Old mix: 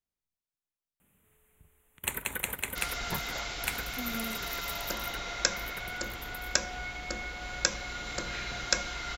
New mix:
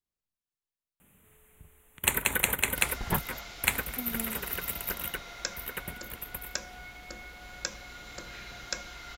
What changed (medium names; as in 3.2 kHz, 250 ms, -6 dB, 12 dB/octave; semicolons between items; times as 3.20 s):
first sound +7.0 dB; second sound -7.5 dB